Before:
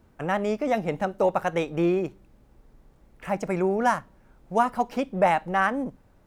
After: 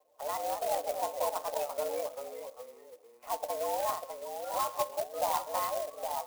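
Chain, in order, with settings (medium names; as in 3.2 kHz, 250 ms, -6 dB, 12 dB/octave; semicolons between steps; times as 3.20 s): coarse spectral quantiser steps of 30 dB; peak limiter -17.5 dBFS, peak gain reduction 7 dB; feedback comb 480 Hz, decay 0.17 s, harmonics all, mix 70%; ever faster or slower copies 173 ms, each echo -2 st, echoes 3, each echo -6 dB; static phaser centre 630 Hz, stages 4; on a send at -15 dB: reverberation RT60 0.75 s, pre-delay 5 ms; on the sum: mistuned SSB +110 Hz 270–2300 Hz; sampling jitter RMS 0.065 ms; trim +5.5 dB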